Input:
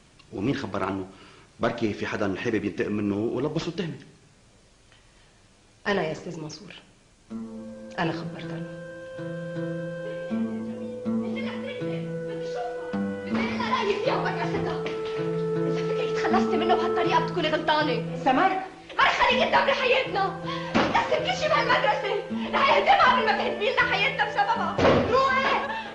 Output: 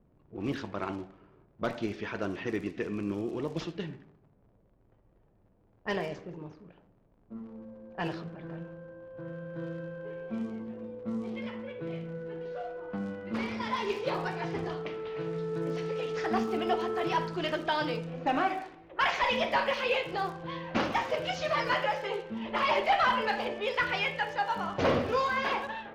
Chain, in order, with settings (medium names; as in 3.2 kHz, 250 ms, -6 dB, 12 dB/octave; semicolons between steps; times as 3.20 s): crackle 80 per s -33 dBFS; level-controlled noise filter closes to 570 Hz, open at -21 dBFS; trim -7 dB